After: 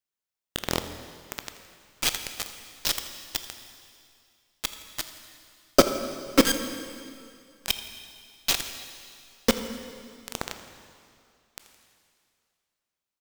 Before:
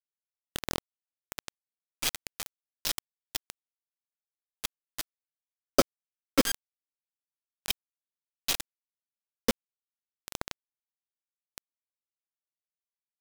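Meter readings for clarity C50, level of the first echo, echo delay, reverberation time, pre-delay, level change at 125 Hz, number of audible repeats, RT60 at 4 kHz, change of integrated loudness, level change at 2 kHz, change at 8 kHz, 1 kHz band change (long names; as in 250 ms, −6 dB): 8.5 dB, −17.5 dB, 83 ms, 2.4 s, 16 ms, +5.5 dB, 1, 2.3 s, +4.5 dB, +5.5 dB, +4.5 dB, +5.5 dB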